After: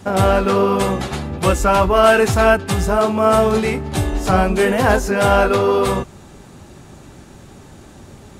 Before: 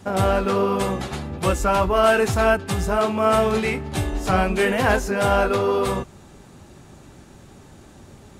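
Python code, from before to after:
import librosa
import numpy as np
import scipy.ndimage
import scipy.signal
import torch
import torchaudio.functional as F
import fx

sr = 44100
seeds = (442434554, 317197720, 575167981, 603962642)

y = fx.dynamic_eq(x, sr, hz=2400.0, q=1.1, threshold_db=-36.0, ratio=4.0, max_db=-5, at=(2.9, 5.04))
y = y * librosa.db_to_amplitude(5.0)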